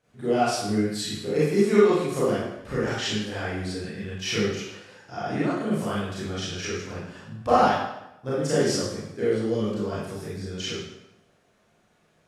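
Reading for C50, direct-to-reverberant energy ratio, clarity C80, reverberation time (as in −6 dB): −2.5 dB, −10.0 dB, 2.5 dB, 0.85 s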